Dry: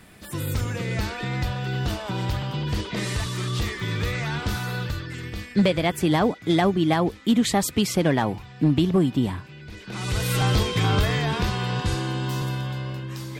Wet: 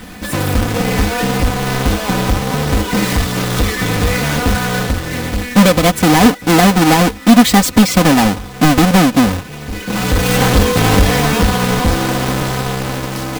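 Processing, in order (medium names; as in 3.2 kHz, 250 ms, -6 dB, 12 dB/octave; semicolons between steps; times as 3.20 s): square wave that keeps the level; comb 4 ms, depth 63%; in parallel at +1.5 dB: compression, threshold -27 dBFS, peak gain reduction 15.5 dB; on the sum: trim +4 dB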